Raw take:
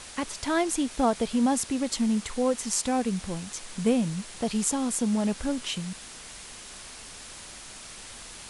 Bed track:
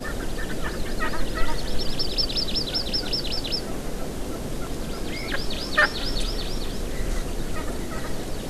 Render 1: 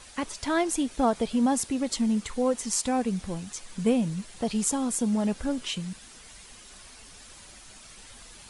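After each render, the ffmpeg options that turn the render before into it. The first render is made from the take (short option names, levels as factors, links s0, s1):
-af "afftdn=nr=8:nf=-44"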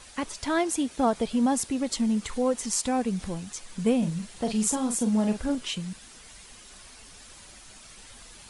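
-filter_complex "[0:a]asettb=1/sr,asplit=3[s0][s1][s2];[s0]atrim=end=0.594[s3];[s1]atrim=start=0.59:end=1.07,asetpts=PTS-STARTPTS,afade=t=in:d=0.004:c=qsin,afade=t=out:st=0.476:d=0.004:c=qsin,highpass=56[s4];[s2]atrim=start=1.066[s5];[s3][s4]acrossfade=d=0.004:c1=hsin:c2=qsin[s6];[s6][s5]acrossfade=d=0.004:c1=qsin:c2=hsin,asettb=1/sr,asplit=3[s7][s8][s9];[s7]atrim=end=2.004[s10];[s8]atrim=start=2:end=3.32,asetpts=PTS-STARTPTS,afade=t=in:d=0.004:c=qsin,afade=t=out:st=1.316:d=0.004:c=qsin,acompressor=mode=upward:threshold=0.0355:ratio=2.5:attack=3.2:release=140:knee=2.83:detection=peak[s11];[s9]atrim=start=3.316[s12];[s10][s11]acrossfade=d=0.004:c1=hsin:c2=qsin[s13];[s13][s12]acrossfade=d=0.004:c1=qsin:c2=hsin,asettb=1/sr,asplit=3[s14][s15][s16];[s14]atrim=end=3.984[s17];[s15]atrim=start=3.98:end=5.55,asetpts=PTS-STARTPTS,afade=t=in:d=0.004:c=qsin,afade=t=out:st=1.566:d=0.004:c=qsin,asplit=2[s18][s19];[s19]adelay=42,volume=0.422[s20];[s18][s20]amix=inputs=2:normalize=0,atrim=end_sample=69237[s21];[s16]atrim=start=5.546[s22];[s17][s21]acrossfade=d=0.004:c1=hsin:c2=qsin[s23];[s23][s22]acrossfade=d=0.004:c1=qsin:c2=hsin"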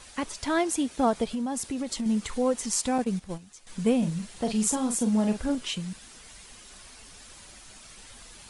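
-filter_complex "[0:a]asettb=1/sr,asplit=3[s0][s1][s2];[s0]atrim=end=1.244[s3];[s1]atrim=start=1.24:end=2.06,asetpts=PTS-STARTPTS,afade=t=in:d=0.004:c=qsin,afade=t=out:st=0.816:d=0.004:c=qsin,acompressor=threshold=0.0447:ratio=6:attack=3.2:release=140:knee=1:detection=peak[s4];[s2]atrim=start=2.056[s5];[s3][s4]acrossfade=d=0.004:c1=hsin:c2=qsin[s6];[s6][s5]acrossfade=d=0.004:c1=qsin:c2=hsin,asettb=1/sr,asplit=3[s7][s8][s9];[s7]atrim=end=2.984[s10];[s8]atrim=start=2.98:end=3.67,asetpts=PTS-STARTPTS,afade=t=in:d=0.004:c=qsin,afade=t=out:st=0.686:d=0.004:c=qsin,agate=range=0.251:threshold=0.0251:ratio=16:release=100:detection=peak[s11];[s9]atrim=start=3.666[s12];[s10][s11]acrossfade=d=0.004:c1=hsin:c2=qsin[s13];[s13][s12]acrossfade=d=0.004:c1=qsin:c2=hsin"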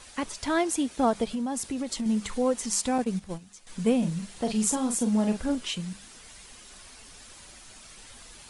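-af "bandreject=f=50:t=h:w=6,bandreject=f=100:t=h:w=6,bandreject=f=150:t=h:w=6,bandreject=f=200:t=h:w=6"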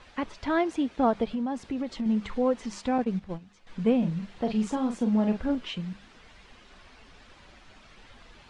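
-af "lowpass=3700,aemphasis=mode=reproduction:type=cd"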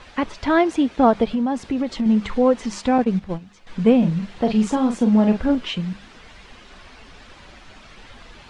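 -af "volume=2.66"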